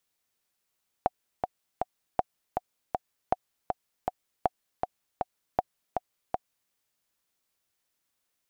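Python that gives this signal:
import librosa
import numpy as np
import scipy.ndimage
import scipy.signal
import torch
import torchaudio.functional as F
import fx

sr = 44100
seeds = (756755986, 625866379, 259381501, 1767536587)

y = fx.click_track(sr, bpm=159, beats=3, bars=5, hz=736.0, accent_db=4.5, level_db=-9.5)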